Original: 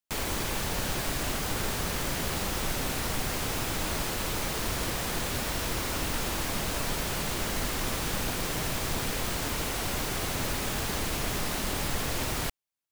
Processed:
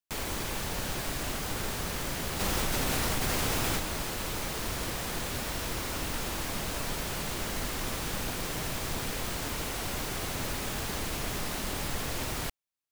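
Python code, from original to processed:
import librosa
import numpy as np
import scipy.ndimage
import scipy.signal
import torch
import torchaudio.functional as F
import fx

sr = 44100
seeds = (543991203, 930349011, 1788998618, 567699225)

y = fx.env_flatten(x, sr, amount_pct=100, at=(2.39, 3.78), fade=0.02)
y = F.gain(torch.from_numpy(y), -3.0).numpy()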